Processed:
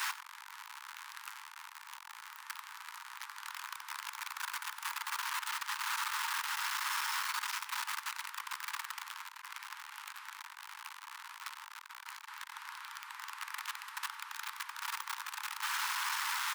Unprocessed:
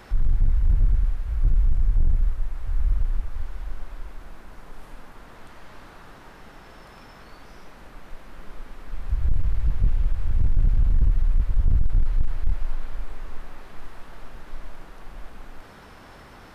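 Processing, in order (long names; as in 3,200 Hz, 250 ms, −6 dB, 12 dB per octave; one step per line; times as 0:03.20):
converter with a step at zero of −30 dBFS
Butterworth high-pass 880 Hz 96 dB per octave
single-tap delay 93 ms −19 dB
level +2 dB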